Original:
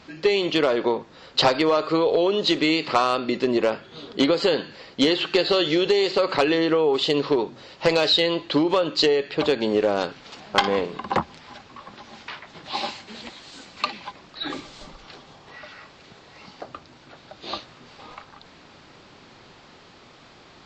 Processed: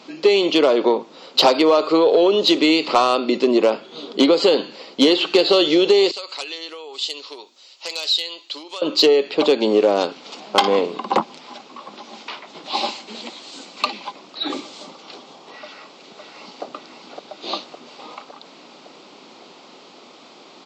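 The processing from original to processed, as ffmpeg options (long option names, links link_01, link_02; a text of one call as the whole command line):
ffmpeg -i in.wav -filter_complex "[0:a]asettb=1/sr,asplit=3[link_01][link_02][link_03];[link_01]atrim=end=6.114[link_04];[link_02]atrim=start=6.11:end=8.82,asetpts=PTS-STARTPTS,afade=type=in:duration=0.004:curve=qsin,afade=type=out:start_time=2.706:duration=0.004:curve=qsin,aderivative[link_05];[link_03]atrim=start=8.816[link_06];[link_04][link_05]acrossfade=duration=0.004:curve1=hsin:curve2=qsin[link_07];[link_07][link_06]acrossfade=duration=0.004:curve1=qsin:curve2=hsin,asplit=2[link_08][link_09];[link_09]afade=type=in:start_time=15.62:duration=0.01,afade=type=out:start_time=16.63:duration=0.01,aecho=0:1:560|1120|1680|2240|2800|3360|3920|4480|5040|5600:0.562341|0.365522|0.237589|0.154433|0.100381|0.0652479|0.0424112|0.0275673|0.0179187|0.0116472[link_10];[link_08][link_10]amix=inputs=2:normalize=0,highpass=frequency=220:width=0.5412,highpass=frequency=220:width=1.3066,equalizer=frequency=1700:width_type=o:width=0.52:gain=-11,acontrast=60" out.wav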